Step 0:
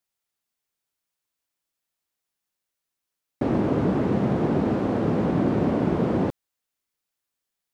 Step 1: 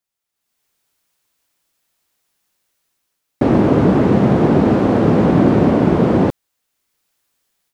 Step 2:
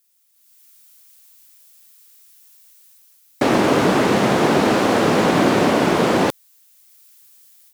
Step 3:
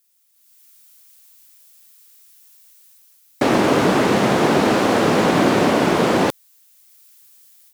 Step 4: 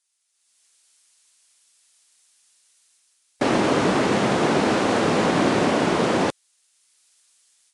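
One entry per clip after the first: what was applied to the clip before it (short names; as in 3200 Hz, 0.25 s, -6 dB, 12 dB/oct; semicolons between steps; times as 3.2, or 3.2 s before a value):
AGC gain up to 14.5 dB
tilt +4.5 dB/oct; gain +3.5 dB
nothing audible
gain -4 dB; Vorbis 48 kbps 22050 Hz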